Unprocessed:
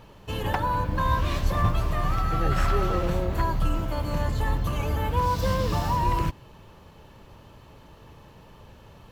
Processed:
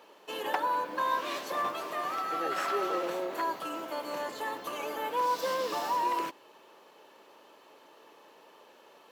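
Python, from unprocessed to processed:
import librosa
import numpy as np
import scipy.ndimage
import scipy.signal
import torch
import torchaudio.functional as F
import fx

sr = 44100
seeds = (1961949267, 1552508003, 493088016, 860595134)

y = scipy.signal.sosfilt(scipy.signal.butter(4, 330.0, 'highpass', fs=sr, output='sos'), x)
y = y * 10.0 ** (-2.5 / 20.0)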